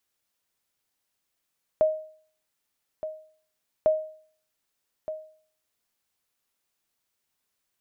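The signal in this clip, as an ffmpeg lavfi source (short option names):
-f lavfi -i "aevalsrc='0.2*(sin(2*PI*625*mod(t,2.05))*exp(-6.91*mod(t,2.05)/0.51)+0.237*sin(2*PI*625*max(mod(t,2.05)-1.22,0))*exp(-6.91*max(mod(t,2.05)-1.22,0)/0.51))':d=4.1:s=44100"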